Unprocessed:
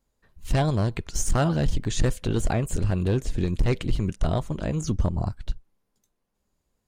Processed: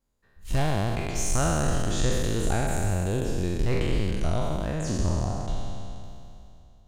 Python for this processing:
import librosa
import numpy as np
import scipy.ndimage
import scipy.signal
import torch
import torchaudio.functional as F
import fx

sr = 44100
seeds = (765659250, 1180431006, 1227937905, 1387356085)

y = fx.spec_trails(x, sr, decay_s=2.7)
y = y * librosa.db_to_amplitude(-6.0)